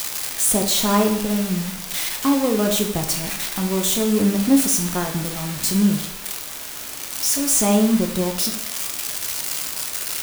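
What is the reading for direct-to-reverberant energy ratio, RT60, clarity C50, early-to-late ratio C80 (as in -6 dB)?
3.0 dB, 0.70 s, 7.5 dB, 10.5 dB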